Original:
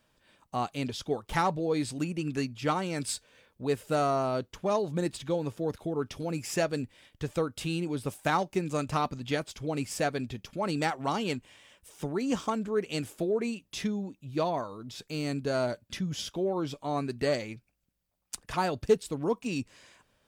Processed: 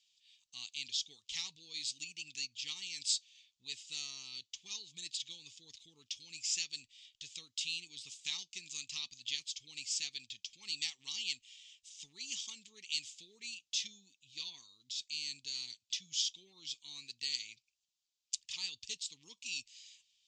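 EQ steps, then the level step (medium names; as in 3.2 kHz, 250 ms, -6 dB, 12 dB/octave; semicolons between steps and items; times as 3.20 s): inverse Chebyshev high-pass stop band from 1.6 kHz, stop band 40 dB; resonant low-pass 7.2 kHz, resonance Q 3.9; distance through air 180 m; +8.0 dB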